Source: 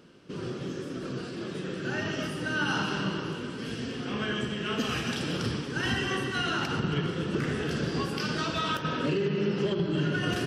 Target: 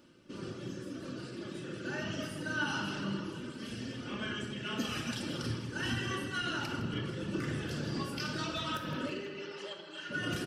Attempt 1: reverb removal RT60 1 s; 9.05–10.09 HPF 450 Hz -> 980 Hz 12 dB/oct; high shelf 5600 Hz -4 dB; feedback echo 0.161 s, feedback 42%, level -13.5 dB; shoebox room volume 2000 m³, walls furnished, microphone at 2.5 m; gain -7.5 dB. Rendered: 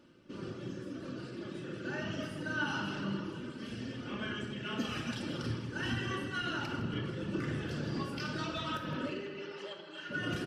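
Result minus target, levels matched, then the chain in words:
8000 Hz band -5.5 dB
reverb removal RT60 1 s; 9.05–10.09 HPF 450 Hz -> 980 Hz 12 dB/oct; high shelf 5600 Hz +6.5 dB; feedback echo 0.161 s, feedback 42%, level -13.5 dB; shoebox room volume 2000 m³, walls furnished, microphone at 2.5 m; gain -7.5 dB

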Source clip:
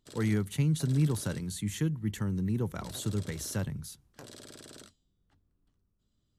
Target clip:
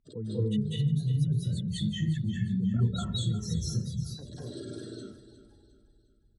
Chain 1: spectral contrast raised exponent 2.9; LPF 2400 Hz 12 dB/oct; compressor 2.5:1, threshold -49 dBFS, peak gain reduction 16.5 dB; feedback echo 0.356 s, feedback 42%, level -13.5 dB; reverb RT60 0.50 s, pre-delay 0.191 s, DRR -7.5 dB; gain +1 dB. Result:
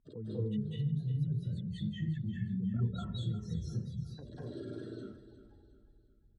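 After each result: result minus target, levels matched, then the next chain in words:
8000 Hz band -13.5 dB; compressor: peak gain reduction +6.5 dB
spectral contrast raised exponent 2.9; LPF 6400 Hz 12 dB/oct; compressor 2.5:1, threshold -49 dBFS, peak gain reduction 16.5 dB; feedback echo 0.356 s, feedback 42%, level -13.5 dB; reverb RT60 0.50 s, pre-delay 0.191 s, DRR -7.5 dB; gain +1 dB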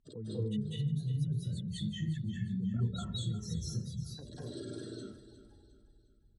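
compressor: peak gain reduction +6.5 dB
spectral contrast raised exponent 2.9; LPF 6400 Hz 12 dB/oct; compressor 2.5:1, threshold -38.5 dBFS, peak gain reduction 10.5 dB; feedback echo 0.356 s, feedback 42%, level -13.5 dB; reverb RT60 0.50 s, pre-delay 0.191 s, DRR -7.5 dB; gain +1 dB

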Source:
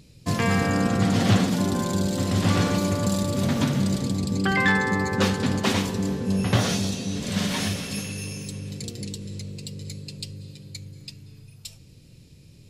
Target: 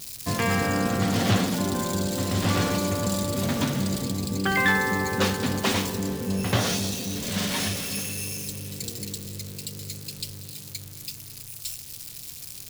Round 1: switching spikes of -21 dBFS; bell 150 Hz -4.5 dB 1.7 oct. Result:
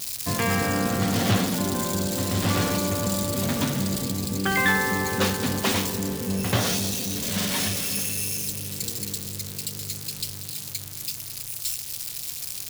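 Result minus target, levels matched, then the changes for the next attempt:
switching spikes: distortion +6 dB
change: switching spikes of -27.5 dBFS

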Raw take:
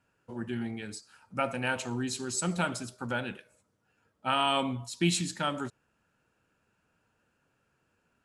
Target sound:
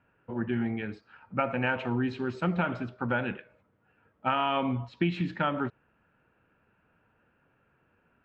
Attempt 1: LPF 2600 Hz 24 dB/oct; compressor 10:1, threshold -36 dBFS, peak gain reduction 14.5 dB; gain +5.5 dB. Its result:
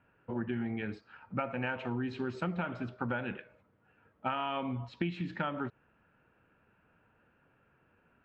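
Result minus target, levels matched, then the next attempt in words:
compressor: peak gain reduction +7 dB
LPF 2600 Hz 24 dB/oct; compressor 10:1, threshold -28 dBFS, peak gain reduction 7.5 dB; gain +5.5 dB

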